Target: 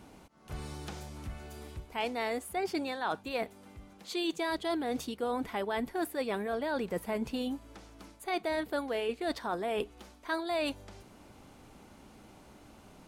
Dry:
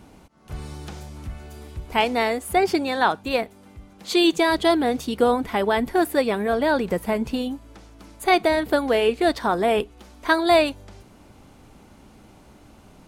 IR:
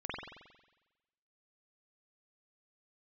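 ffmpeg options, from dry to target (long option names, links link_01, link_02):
-af "lowshelf=frequency=180:gain=-5,areverse,acompressor=threshold=-27dB:ratio=6,areverse,volume=-3.5dB"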